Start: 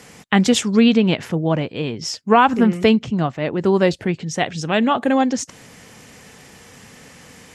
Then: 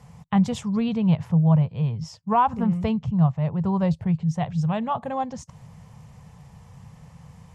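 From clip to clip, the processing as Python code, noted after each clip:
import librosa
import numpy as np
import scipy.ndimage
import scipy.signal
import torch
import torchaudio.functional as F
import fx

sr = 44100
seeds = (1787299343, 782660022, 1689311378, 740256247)

y = fx.curve_eq(x, sr, hz=(160.0, 300.0, 520.0, 1000.0, 1500.0), db=(0, -29, -17, -9, -23))
y = y * librosa.db_to_amplitude(6.0)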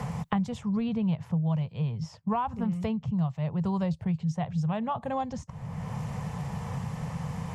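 y = fx.band_squash(x, sr, depth_pct=100)
y = y * librosa.db_to_amplitude(-6.5)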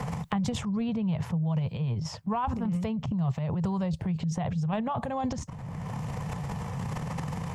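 y = fx.transient(x, sr, attack_db=0, sustain_db=12)
y = y * librosa.db_to_amplitude(-1.5)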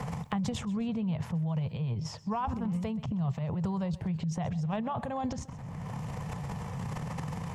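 y = fx.echo_feedback(x, sr, ms=129, feedback_pct=42, wet_db=-19.0)
y = y * librosa.db_to_amplitude(-3.0)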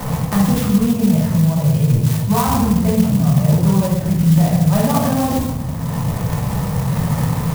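y = fx.room_shoebox(x, sr, seeds[0], volume_m3=470.0, walls='mixed', distance_m=2.7)
y = fx.clock_jitter(y, sr, seeds[1], jitter_ms=0.075)
y = y * librosa.db_to_amplitude(8.5)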